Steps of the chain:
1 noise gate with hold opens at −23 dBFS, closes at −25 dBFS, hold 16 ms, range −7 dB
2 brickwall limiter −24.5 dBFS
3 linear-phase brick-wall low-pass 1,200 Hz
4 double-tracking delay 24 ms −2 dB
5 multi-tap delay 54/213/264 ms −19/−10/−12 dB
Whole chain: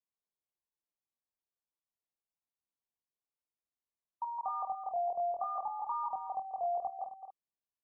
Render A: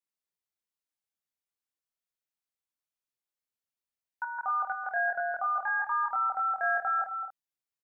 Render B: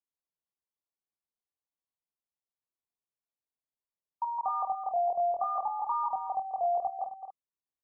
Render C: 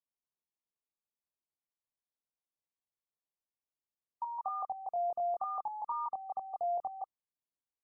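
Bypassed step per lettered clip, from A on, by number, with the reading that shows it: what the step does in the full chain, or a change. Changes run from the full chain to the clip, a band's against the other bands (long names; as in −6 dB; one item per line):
3, change in integrated loudness +7.5 LU
2, average gain reduction 5.5 dB
5, echo-to-direct ratio −7.5 dB to none audible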